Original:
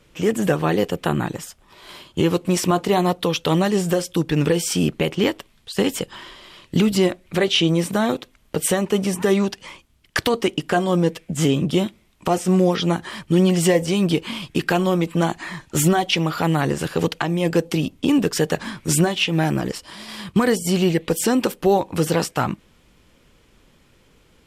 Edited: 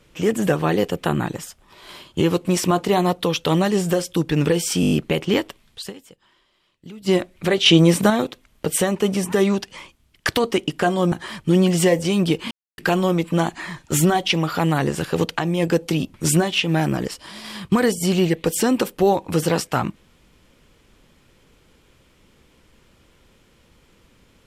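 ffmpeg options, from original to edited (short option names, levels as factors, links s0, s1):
-filter_complex "[0:a]asplit=14[s0][s1][s2][s3][s4][s5][s6][s7][s8][s9][s10][s11][s12][s13];[s0]atrim=end=4.832[s14];[s1]atrim=start=4.808:end=4.832[s15];[s2]atrim=start=4.808:end=4.832[s16];[s3]atrim=start=4.808:end=4.832[s17];[s4]atrim=start=4.808:end=4.832[s18];[s5]atrim=start=4.808:end=5.96,asetpts=PTS-STARTPTS,afade=t=out:st=0.952:d=0.2:c=exp:silence=0.0841395[s19];[s6]atrim=start=5.96:end=6.79,asetpts=PTS-STARTPTS,volume=0.0841[s20];[s7]atrim=start=6.79:end=7.562,asetpts=PTS-STARTPTS,afade=t=in:d=0.2:c=exp:silence=0.0841395[s21];[s8]atrim=start=7.558:end=8.002,asetpts=PTS-STARTPTS,volume=1.88[s22];[s9]atrim=start=7.998:end=11.022[s23];[s10]atrim=start=12.948:end=14.34,asetpts=PTS-STARTPTS,afade=t=out:st=1.388:d=0.004:c=hsin[s24];[s11]atrim=start=14.34:end=14.61,asetpts=PTS-STARTPTS,volume=0[s25];[s12]atrim=start=14.61:end=17.972,asetpts=PTS-STARTPTS,afade=t=in:d=0.004:c=hsin[s26];[s13]atrim=start=18.778[s27];[s14][s15]acrossfade=d=0.004:c1=hsin:c2=hsin[s28];[s28][s16]acrossfade=d=0.004:c1=hsin:c2=hsin[s29];[s29][s17]acrossfade=d=0.004:c1=hsin:c2=hsin[s30];[s30][s18]acrossfade=d=0.004:c1=hsin:c2=hsin[s31];[s19][s20][s21]concat=n=3:v=0:a=1[s32];[s31][s32]acrossfade=d=0.004:c1=hsin:c2=hsin[s33];[s33][s22]acrossfade=d=0.004:c1=hsin:c2=hsin[s34];[s34][s23]acrossfade=d=0.004:c1=hsin:c2=hsin[s35];[s24][s25][s26]concat=n=3:v=0:a=1[s36];[s35][s36]acrossfade=d=0.004:c1=hsin:c2=hsin[s37];[s37][s27]acrossfade=d=0.004:c1=hsin:c2=hsin"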